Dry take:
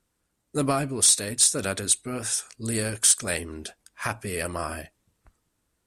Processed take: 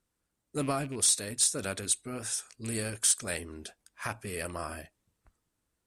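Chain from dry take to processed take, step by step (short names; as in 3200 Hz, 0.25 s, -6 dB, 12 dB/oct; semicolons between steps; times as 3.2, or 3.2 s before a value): rattling part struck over -30 dBFS, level -30 dBFS; gain -6.5 dB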